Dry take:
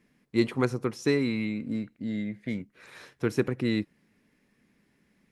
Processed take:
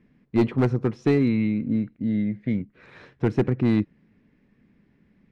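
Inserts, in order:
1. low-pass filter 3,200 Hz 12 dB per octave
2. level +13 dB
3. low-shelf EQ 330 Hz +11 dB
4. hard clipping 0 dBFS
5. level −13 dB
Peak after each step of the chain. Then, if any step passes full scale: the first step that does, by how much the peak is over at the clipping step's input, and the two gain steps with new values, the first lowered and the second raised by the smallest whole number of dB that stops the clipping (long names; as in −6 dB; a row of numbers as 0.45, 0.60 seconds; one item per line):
−11.0, +2.0, +7.5, 0.0, −13.0 dBFS
step 2, 7.5 dB
step 2 +5 dB, step 5 −5 dB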